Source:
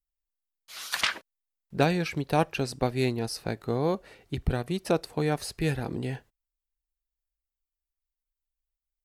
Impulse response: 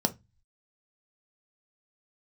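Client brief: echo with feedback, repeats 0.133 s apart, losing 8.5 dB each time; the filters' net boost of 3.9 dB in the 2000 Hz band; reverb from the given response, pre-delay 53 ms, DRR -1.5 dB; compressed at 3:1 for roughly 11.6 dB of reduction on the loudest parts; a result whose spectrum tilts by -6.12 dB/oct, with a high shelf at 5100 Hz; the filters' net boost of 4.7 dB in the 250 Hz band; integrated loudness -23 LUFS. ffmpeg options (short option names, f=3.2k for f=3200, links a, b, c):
-filter_complex "[0:a]equalizer=f=250:t=o:g=6.5,equalizer=f=2k:t=o:g=4,highshelf=f=5.1k:g=5.5,acompressor=threshold=-32dB:ratio=3,aecho=1:1:133|266|399|532:0.376|0.143|0.0543|0.0206,asplit=2[a][b];[1:a]atrim=start_sample=2205,adelay=53[c];[b][c]afir=irnorm=-1:irlink=0,volume=-6.5dB[d];[a][d]amix=inputs=2:normalize=0,volume=3dB"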